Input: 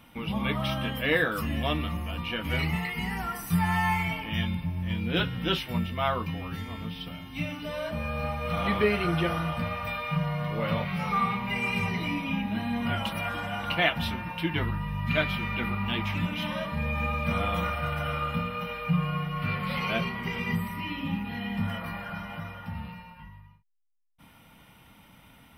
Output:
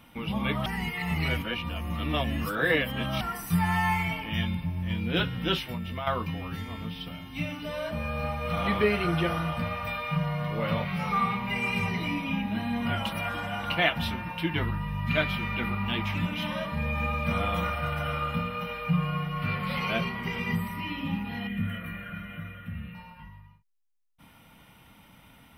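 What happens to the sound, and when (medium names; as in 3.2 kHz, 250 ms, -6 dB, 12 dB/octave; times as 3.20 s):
0.66–3.21 s: reverse
5.59–6.07 s: compression 5:1, threshold -30 dBFS
21.47–22.95 s: static phaser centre 2.1 kHz, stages 4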